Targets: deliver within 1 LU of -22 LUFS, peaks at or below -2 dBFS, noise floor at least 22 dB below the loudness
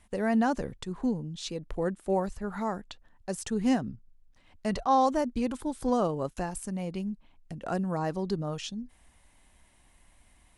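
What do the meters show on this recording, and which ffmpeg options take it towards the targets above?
loudness -31.0 LUFS; peak level -14.0 dBFS; loudness target -22.0 LUFS
-> -af "volume=2.82"

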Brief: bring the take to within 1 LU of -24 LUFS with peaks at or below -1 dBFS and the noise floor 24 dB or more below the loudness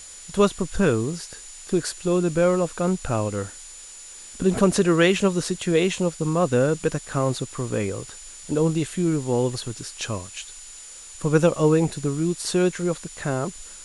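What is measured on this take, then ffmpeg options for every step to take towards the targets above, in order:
steady tone 7 kHz; tone level -42 dBFS; noise floor -42 dBFS; noise floor target -47 dBFS; loudness -23.0 LUFS; peak level -4.5 dBFS; loudness target -24.0 LUFS
-> -af "bandreject=f=7000:w=30"
-af "afftdn=nr=6:nf=-42"
-af "volume=0.891"

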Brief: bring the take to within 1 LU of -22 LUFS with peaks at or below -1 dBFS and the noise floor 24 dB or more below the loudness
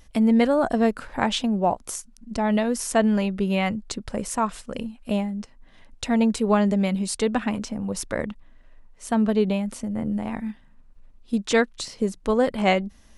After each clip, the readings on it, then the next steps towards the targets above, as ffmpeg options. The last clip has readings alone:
loudness -24.0 LUFS; peak level -5.5 dBFS; loudness target -22.0 LUFS
-> -af "volume=1.26"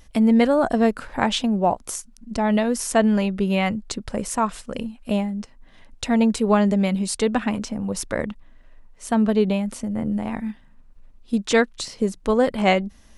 loudness -22.0 LUFS; peak level -3.5 dBFS; noise floor -50 dBFS

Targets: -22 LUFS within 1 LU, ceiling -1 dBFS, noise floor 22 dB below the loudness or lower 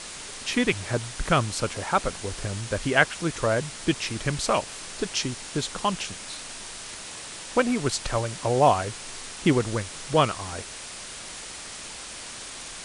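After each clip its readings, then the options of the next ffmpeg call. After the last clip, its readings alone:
noise floor -39 dBFS; noise floor target -50 dBFS; loudness -27.5 LUFS; peak level -3.0 dBFS; loudness target -22.0 LUFS
-> -af "afftdn=nr=11:nf=-39"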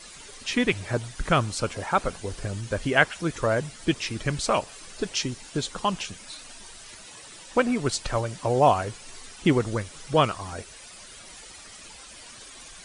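noise floor -46 dBFS; noise floor target -49 dBFS
-> -af "afftdn=nr=6:nf=-46"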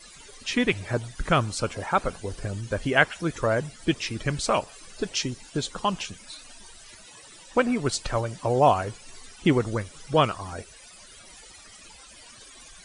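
noise floor -49 dBFS; loudness -26.5 LUFS; peak level -3.0 dBFS; loudness target -22.0 LUFS
-> -af "volume=1.68,alimiter=limit=0.891:level=0:latency=1"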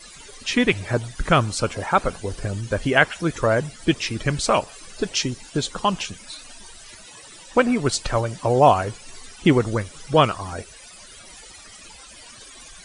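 loudness -22.0 LUFS; peak level -1.0 dBFS; noise floor -44 dBFS

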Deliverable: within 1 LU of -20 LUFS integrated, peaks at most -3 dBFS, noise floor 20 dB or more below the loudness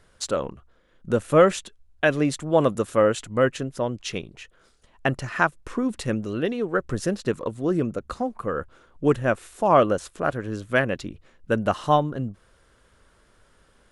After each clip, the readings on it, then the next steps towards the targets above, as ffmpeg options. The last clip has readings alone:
loudness -24.5 LUFS; peak level -4.5 dBFS; loudness target -20.0 LUFS
-> -af "volume=1.68,alimiter=limit=0.708:level=0:latency=1"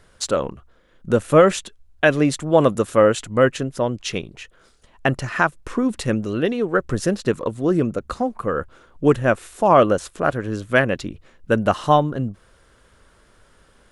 loudness -20.5 LUFS; peak level -3.0 dBFS; noise floor -56 dBFS

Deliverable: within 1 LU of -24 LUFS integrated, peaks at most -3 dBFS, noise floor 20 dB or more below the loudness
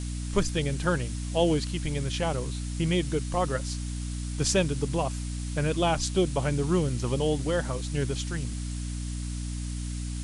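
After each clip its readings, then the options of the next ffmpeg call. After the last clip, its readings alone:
hum 60 Hz; highest harmonic 300 Hz; hum level -30 dBFS; noise floor -33 dBFS; noise floor target -49 dBFS; loudness -29.0 LUFS; peak level -10.0 dBFS; loudness target -24.0 LUFS
-> -af "bandreject=f=60:t=h:w=6,bandreject=f=120:t=h:w=6,bandreject=f=180:t=h:w=6,bandreject=f=240:t=h:w=6,bandreject=f=300:t=h:w=6"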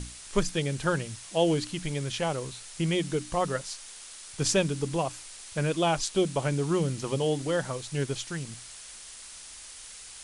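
hum not found; noise floor -46 dBFS; noise floor target -50 dBFS
-> -af "afftdn=nr=6:nf=-46"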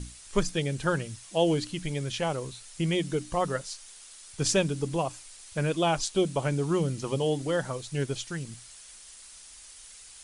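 noise floor -49 dBFS; noise floor target -50 dBFS
-> -af "afftdn=nr=6:nf=-49"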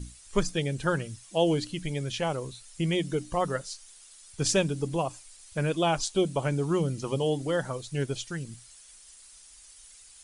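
noise floor -53 dBFS; loudness -29.5 LUFS; peak level -10.5 dBFS; loudness target -24.0 LUFS
-> -af "volume=1.88"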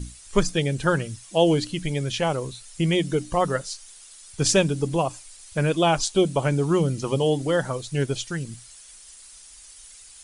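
loudness -24.0 LUFS; peak level -5.0 dBFS; noise floor -47 dBFS

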